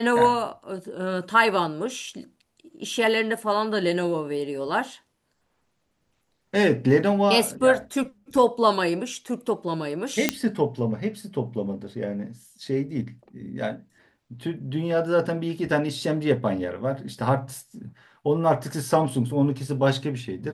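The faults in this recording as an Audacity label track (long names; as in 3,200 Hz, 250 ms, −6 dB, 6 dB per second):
10.290000	10.290000	click −3 dBFS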